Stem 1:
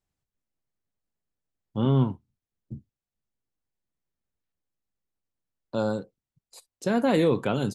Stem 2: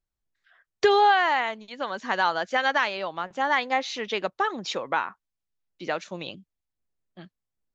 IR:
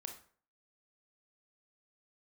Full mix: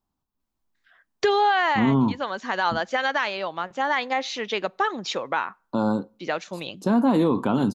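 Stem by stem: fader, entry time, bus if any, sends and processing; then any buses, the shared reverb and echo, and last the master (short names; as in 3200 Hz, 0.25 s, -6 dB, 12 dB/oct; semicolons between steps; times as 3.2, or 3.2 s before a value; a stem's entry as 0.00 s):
+2.5 dB, 0.00 s, send -18 dB, graphic EQ 125/250/500/1000/2000/8000 Hz -5/+9/-6/+11/-10/-7 dB
+1.5 dB, 0.40 s, send -21 dB, dry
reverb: on, RT60 0.50 s, pre-delay 22 ms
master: limiter -12 dBFS, peak gain reduction 6 dB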